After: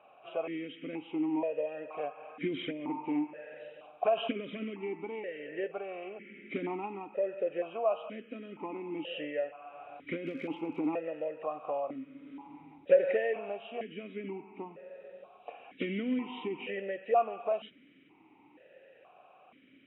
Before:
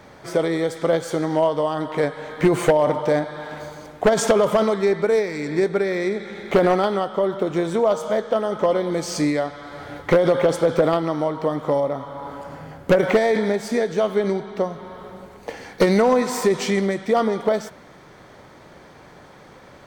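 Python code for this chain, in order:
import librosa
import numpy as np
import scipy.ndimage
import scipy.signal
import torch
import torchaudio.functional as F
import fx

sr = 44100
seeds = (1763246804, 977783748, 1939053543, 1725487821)

y = fx.freq_compress(x, sr, knee_hz=2300.0, ratio=4.0)
y = fx.dmg_crackle(y, sr, seeds[0], per_s=fx.line((10.25, 200.0), (10.95, 44.0)), level_db=-25.0, at=(10.25, 10.95), fade=0.02)
y = fx.vowel_held(y, sr, hz=2.1)
y = F.gain(torch.from_numpy(y), -3.0).numpy()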